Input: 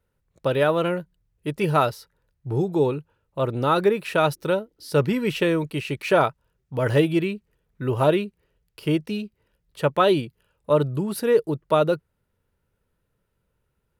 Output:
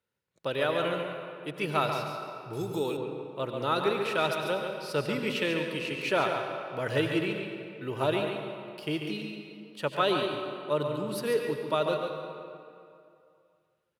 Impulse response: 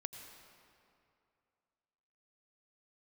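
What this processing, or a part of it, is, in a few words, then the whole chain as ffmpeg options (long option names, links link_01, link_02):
PA in a hall: -filter_complex "[0:a]highpass=150,equalizer=frequency=3600:width_type=o:width=2.4:gain=7.5,aecho=1:1:141:0.447[link_01];[1:a]atrim=start_sample=2205[link_02];[link_01][link_02]afir=irnorm=-1:irlink=0,asettb=1/sr,asplit=3[link_03][link_04][link_05];[link_03]atrim=end=2.534[link_06];[link_04]atrim=start=2.53:end=2.97,asetpts=PTS-STARTPTS,afade=type=in:duration=0.004:curve=qsin,afade=type=out:start_time=0.436:duration=0.004:curve=qsin,aemphasis=mode=production:type=75fm[link_07];[link_05]atrim=start=2.966[link_08];[link_06][link_07]acrossfade=duration=0.004:curve1=hsin:curve2=qsin[link_09];[link_09][link_08]acrossfade=duration=0.004:curve1=qsin:curve2=hsin,volume=-6.5dB"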